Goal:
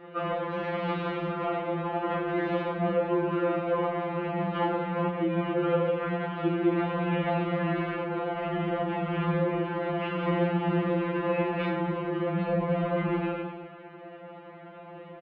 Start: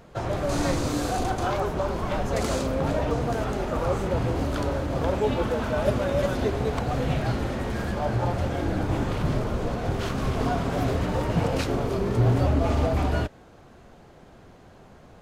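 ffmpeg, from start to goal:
ffmpeg -i in.wav -filter_complex "[0:a]asplit=2[link_01][link_02];[link_02]aecho=0:1:112|224|336:0.282|0.0733|0.0191[link_03];[link_01][link_03]amix=inputs=2:normalize=0,asetrate=41625,aresample=44100,atempo=1.05946,asplit=2[link_04][link_05];[link_05]aecho=0:1:30|75|142.5|243.8|395.6:0.631|0.398|0.251|0.158|0.1[link_06];[link_04][link_06]amix=inputs=2:normalize=0,highpass=frequency=250:width_type=q:width=0.5412,highpass=frequency=250:width_type=q:width=1.307,lowpass=frequency=3000:width_type=q:width=0.5176,lowpass=frequency=3000:width_type=q:width=0.7071,lowpass=frequency=3000:width_type=q:width=1.932,afreqshift=-75,acompressor=threshold=-30dB:ratio=6,afftfilt=real='re*2.83*eq(mod(b,8),0)':imag='im*2.83*eq(mod(b,8),0)':win_size=2048:overlap=0.75,volume=8dB" out.wav

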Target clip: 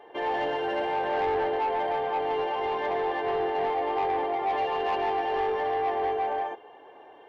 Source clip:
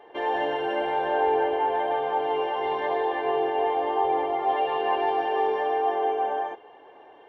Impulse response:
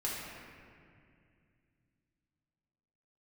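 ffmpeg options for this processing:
-af "asoftclip=type=tanh:threshold=-21.5dB"

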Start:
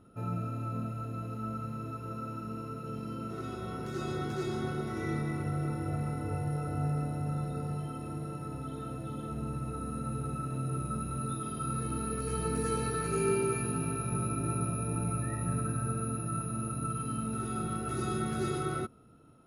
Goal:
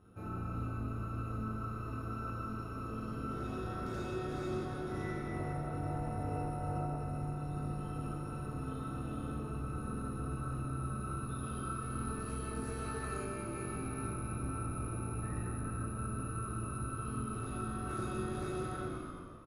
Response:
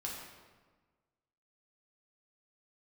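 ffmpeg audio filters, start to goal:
-filter_complex "[0:a]asplit=6[link_01][link_02][link_03][link_04][link_05][link_06];[link_02]adelay=166,afreqshift=-55,volume=-9dB[link_07];[link_03]adelay=332,afreqshift=-110,volume=-15.7dB[link_08];[link_04]adelay=498,afreqshift=-165,volume=-22.5dB[link_09];[link_05]adelay=664,afreqshift=-220,volume=-29.2dB[link_10];[link_06]adelay=830,afreqshift=-275,volume=-36dB[link_11];[link_01][link_07][link_08][link_09][link_10][link_11]amix=inputs=6:normalize=0,acompressor=threshold=-34dB:ratio=6,asettb=1/sr,asplit=3[link_12][link_13][link_14];[link_12]atrim=end=5.294[link_15];[link_13]atrim=start=5.29:end=6.99,asetpts=PTS-STARTPTS,afade=type=in:duration=0.004:curve=qsin,afade=type=out:start_time=1.696:duration=0.004:curve=qsin,equalizer=frequency=640:width=3.7:gain=11[link_16];[link_14]atrim=start=6.986[link_17];[link_15][link_16]acrossfade=duration=0.004:curve1=hsin:curve2=qsin[link_18];[link_18][link_17]acrossfade=duration=0.004:curve1=qsin:curve2=hsin,tremolo=f=200:d=0.71[link_19];[1:a]atrim=start_sample=2205[link_20];[link_19][link_20]afir=irnorm=-1:irlink=0,volume=1dB"

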